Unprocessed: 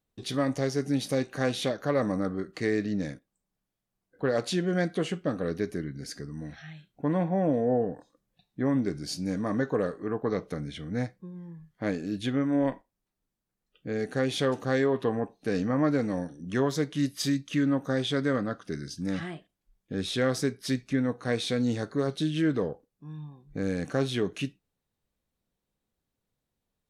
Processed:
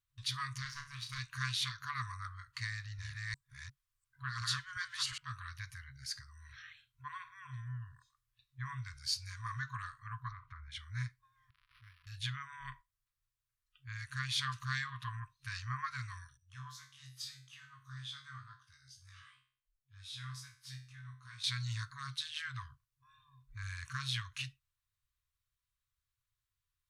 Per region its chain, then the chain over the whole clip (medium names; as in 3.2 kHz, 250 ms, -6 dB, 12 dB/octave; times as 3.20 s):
0.62–1.19 s: power-law waveshaper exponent 1.4 + treble shelf 9.1 kHz -11 dB + flutter echo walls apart 5.8 m, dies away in 0.32 s
2.63–5.18 s: chunks repeated in reverse 356 ms, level -0.5 dB + dynamic bell 2.5 kHz, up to -5 dB, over -48 dBFS, Q 1.9
10.30–10.71 s: spectral peaks clipped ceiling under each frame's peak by 14 dB + low-pass 1.3 kHz + compression 12:1, threshold -33 dBFS
11.50–12.07 s: zero-crossing glitches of -32.5 dBFS + amplifier tone stack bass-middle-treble 6-0-2 + decimation joined by straight lines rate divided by 6×
16.37–21.44 s: peaking EQ 1.9 kHz -6 dB 0.55 oct + chorus 2.2 Hz, delay 19.5 ms, depth 2.1 ms + feedback comb 64 Hz, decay 0.47 s, mix 80%
whole clip: FFT band-reject 130–970 Hz; dynamic bell 4.4 kHz, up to +6 dB, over -51 dBFS, Q 2.5; trim -3.5 dB